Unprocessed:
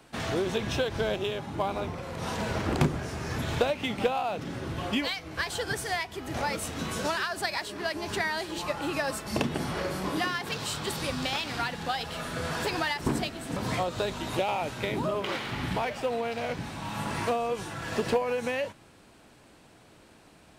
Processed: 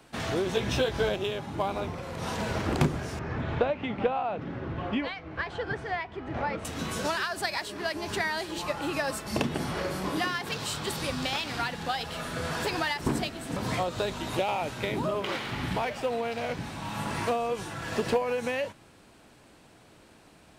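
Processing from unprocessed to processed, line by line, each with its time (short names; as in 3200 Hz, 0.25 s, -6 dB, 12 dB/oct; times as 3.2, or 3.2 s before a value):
0.53–1.09 doubler 16 ms -3 dB
3.19–6.65 LPF 2100 Hz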